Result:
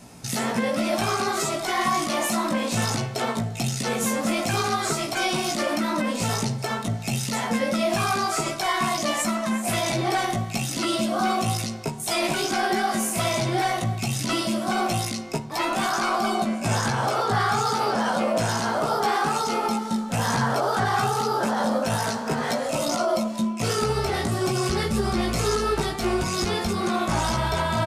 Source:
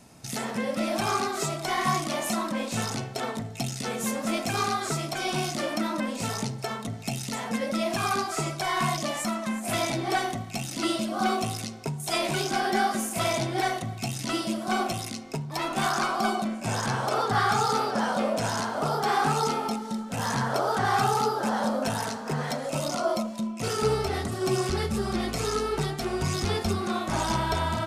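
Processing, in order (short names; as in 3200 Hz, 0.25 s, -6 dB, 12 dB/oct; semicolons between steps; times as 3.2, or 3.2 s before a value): limiter -21 dBFS, peak gain reduction 7.5 dB; doubler 17 ms -4 dB; gain +5 dB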